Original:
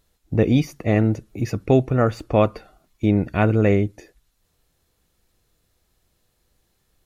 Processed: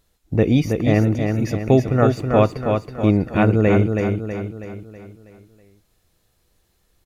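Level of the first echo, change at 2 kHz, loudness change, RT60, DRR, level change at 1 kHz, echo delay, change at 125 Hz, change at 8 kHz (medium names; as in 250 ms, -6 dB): -5.0 dB, +2.5 dB, +2.0 dB, no reverb, no reverb, +2.5 dB, 323 ms, +2.5 dB, no reading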